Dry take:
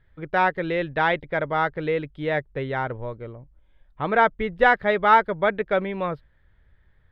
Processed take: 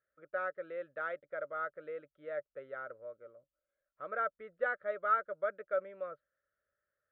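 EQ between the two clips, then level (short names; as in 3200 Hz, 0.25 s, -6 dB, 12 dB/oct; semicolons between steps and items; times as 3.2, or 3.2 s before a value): double band-pass 880 Hz, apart 1.2 oct; -8.5 dB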